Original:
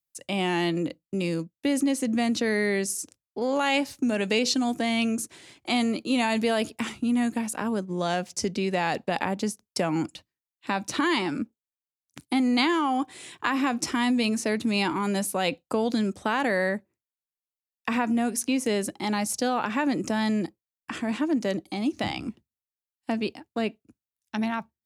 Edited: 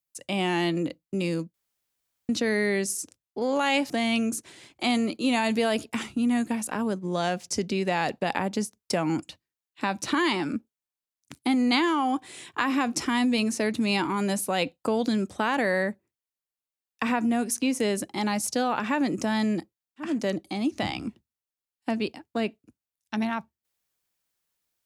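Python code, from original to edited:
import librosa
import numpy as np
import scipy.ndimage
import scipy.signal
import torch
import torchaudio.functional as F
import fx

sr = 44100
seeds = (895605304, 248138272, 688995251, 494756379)

y = fx.edit(x, sr, fx.room_tone_fill(start_s=1.54, length_s=0.75),
    fx.cut(start_s=3.9, length_s=0.86),
    fx.cut(start_s=20.94, length_s=0.35, crossfade_s=0.24), tone=tone)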